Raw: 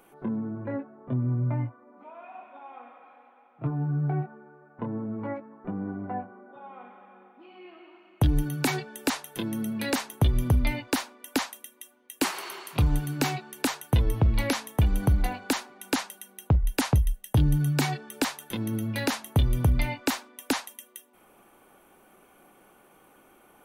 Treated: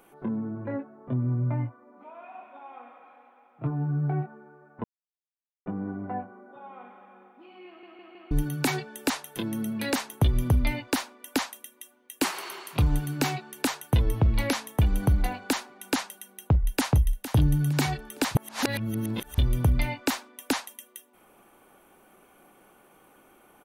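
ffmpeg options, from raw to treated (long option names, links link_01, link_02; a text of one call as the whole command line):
ffmpeg -i in.wav -filter_complex "[0:a]asplit=2[link_01][link_02];[link_02]afade=type=in:start_time=16.36:duration=0.01,afade=type=out:start_time=17.08:duration=0.01,aecho=0:1:460|920|1380|1840:0.251189|0.100475|0.0401902|0.0160761[link_03];[link_01][link_03]amix=inputs=2:normalize=0,asplit=9[link_04][link_05][link_06][link_07][link_08][link_09][link_10][link_11][link_12];[link_04]atrim=end=4.84,asetpts=PTS-STARTPTS,afade=type=out:start_time=4.836:duration=0.004:curve=hsin[link_13];[link_05]atrim=start=4.84:end=5.66,asetpts=PTS-STARTPTS,volume=0[link_14];[link_06]atrim=start=5.66:end=7.832,asetpts=PTS-STARTPTS,afade=type=in:duration=0.004:curve=hsin[link_15];[link_07]atrim=start=7.668:end=7.832[link_16];[link_08]atrim=start=7.668:end=7.832[link_17];[link_09]atrim=start=7.668:end=7.832[link_18];[link_10]atrim=start=8.308:end=18.352[link_19];[link_11]atrim=start=18.348:end=19.382,asetpts=PTS-STARTPTS,areverse[link_20];[link_12]atrim=start=19.378[link_21];[link_13][link_14][link_15]concat=n=3:v=0:a=1[link_22];[link_22][link_16]acrossfade=duration=0.004:curve1=hsin:curve2=hsin[link_23];[link_23][link_17]acrossfade=duration=0.004:curve1=hsin:curve2=hsin[link_24];[link_24][link_18]acrossfade=duration=0.004:curve1=hsin:curve2=hsin[link_25];[link_25][link_19]acrossfade=duration=0.004:curve1=hsin:curve2=hsin[link_26];[link_26][link_20]acrossfade=duration=0.004:curve1=hsin:curve2=hsin[link_27];[link_27][link_21]acrossfade=duration=0.004:curve1=hsin:curve2=hsin" out.wav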